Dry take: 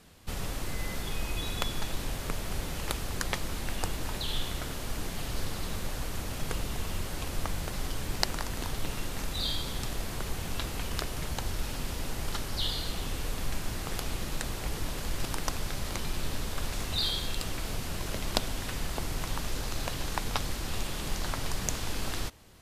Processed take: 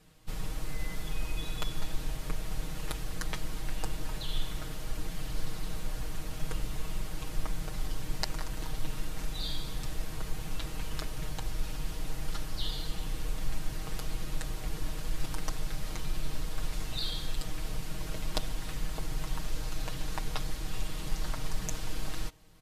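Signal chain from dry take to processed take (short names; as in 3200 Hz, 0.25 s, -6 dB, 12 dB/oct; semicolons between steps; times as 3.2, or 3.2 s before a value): low shelf 120 Hz +7 dB; comb 6.4 ms, depth 81%; gain -8 dB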